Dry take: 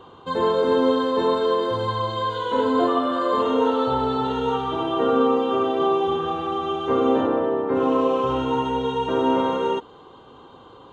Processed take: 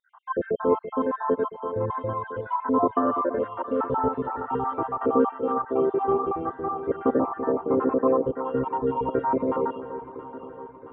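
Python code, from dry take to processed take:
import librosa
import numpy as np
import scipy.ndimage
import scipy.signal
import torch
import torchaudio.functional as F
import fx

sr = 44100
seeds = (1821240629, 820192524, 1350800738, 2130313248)

y = fx.spec_dropout(x, sr, seeds[0], share_pct=60)
y = scipy.signal.sosfilt(scipy.signal.cheby2(4, 50, 4500.0, 'lowpass', fs=sr, output='sos'), y)
y = fx.echo_alternate(y, sr, ms=336, hz=880.0, feedback_pct=74, wet_db=-10)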